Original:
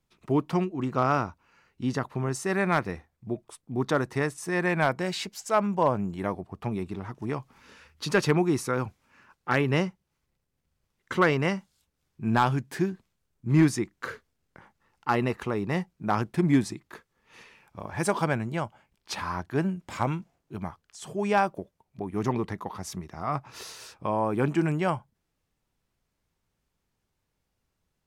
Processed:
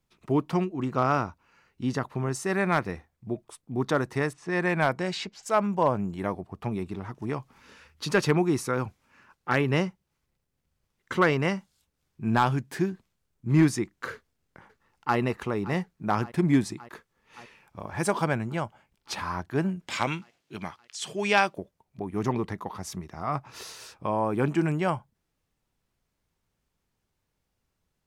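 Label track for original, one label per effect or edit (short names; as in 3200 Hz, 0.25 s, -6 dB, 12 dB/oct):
4.330000	5.430000	low-pass opened by the level closes to 2700 Hz, open at -20.5 dBFS
14.120000	15.170000	echo throw 0.57 s, feedback 75%, level -17 dB
19.870000	21.560000	weighting filter D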